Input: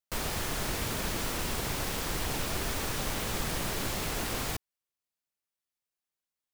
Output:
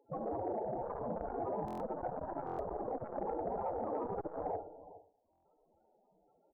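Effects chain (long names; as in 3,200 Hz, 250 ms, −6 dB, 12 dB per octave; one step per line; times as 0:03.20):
compressing power law on the bin magnitudes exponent 0.16
high-pass filter 1,200 Hz 6 dB per octave, from 0:00.86 290 Hz
brickwall limiter −26.5 dBFS, peak gain reduction 8.5 dB
upward compression, threshold −53 dBFS
Chebyshev low-pass with heavy ripple 5,400 Hz, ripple 9 dB
sample-rate reduction 2,200 Hz, jitter 0%
spectral peaks only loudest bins 8
single-tap delay 413 ms −17 dB
four-comb reverb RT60 0.52 s, combs from 32 ms, DRR 6 dB
buffer that repeats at 0:01.66/0:02.45/0:05.31, samples 1,024, times 5
saturating transformer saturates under 360 Hz
level +15 dB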